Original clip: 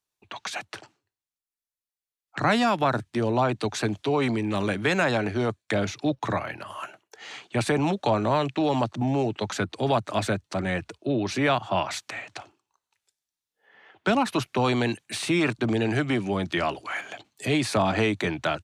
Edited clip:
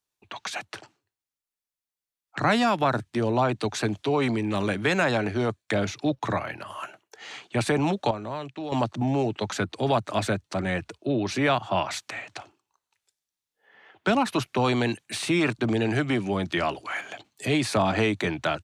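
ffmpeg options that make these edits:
-filter_complex "[0:a]asplit=3[a][b][c];[a]atrim=end=8.112[d];[b]atrim=start=8.108:end=8.722,asetpts=PTS-STARTPTS,volume=-10dB[e];[c]atrim=start=8.718[f];[d][e]acrossfade=d=0.004:c1=hsin:c2=hsin[g];[g][f]acrossfade=d=0.004:c1=hsin:c2=hsin"

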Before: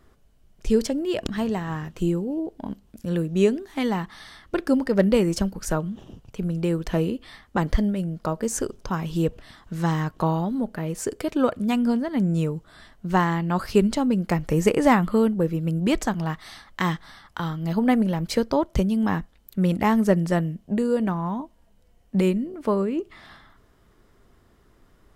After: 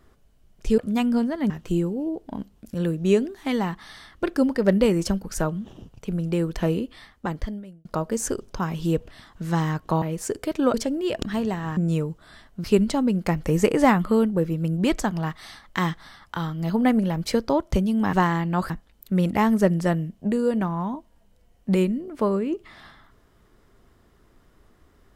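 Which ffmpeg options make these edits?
-filter_complex "[0:a]asplit=10[a][b][c][d][e][f][g][h][i][j];[a]atrim=end=0.782[k];[b]atrim=start=11.508:end=12.232[l];[c]atrim=start=1.808:end=8.16,asetpts=PTS-STARTPTS,afade=t=out:st=5.332:d=1.02[m];[d]atrim=start=8.16:end=10.332,asetpts=PTS-STARTPTS,afade=t=in:d=0.004:c=hsin[n];[e]atrim=start=10.788:end=11.512[o];[f]atrim=start=0.778:end=1.812[p];[g]atrim=start=12.228:end=13.102[q];[h]atrim=start=13.668:end=19.162[r];[i]atrim=start=13.098:end=13.672[s];[j]atrim=start=19.158[t];[k][l]acrossfade=d=0.004:c1=hsin:c2=hsin[u];[m][n]concat=n=2:v=0:a=1[v];[u][v]acrossfade=d=0.004:c1=hsin:c2=hsin[w];[w][o]acrossfade=d=0.004:c1=hsin:c2=hsin[x];[x][p]acrossfade=d=0.004:c1=hsin:c2=hsin[y];[y][q]acrossfade=d=0.004:c1=hsin:c2=hsin[z];[z][r]acrossfade=d=0.004:c1=hsin:c2=hsin[aa];[aa][s]acrossfade=d=0.004:c1=hsin:c2=hsin[ab];[ab][t]acrossfade=d=0.004:c1=hsin:c2=hsin"

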